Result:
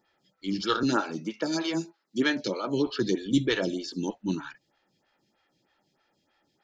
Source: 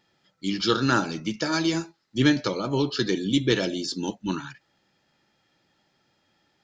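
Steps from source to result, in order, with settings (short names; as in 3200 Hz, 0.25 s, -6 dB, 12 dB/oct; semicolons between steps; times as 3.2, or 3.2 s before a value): 0.83–2.87 HPF 160 Hz 24 dB/oct; photocell phaser 3.2 Hz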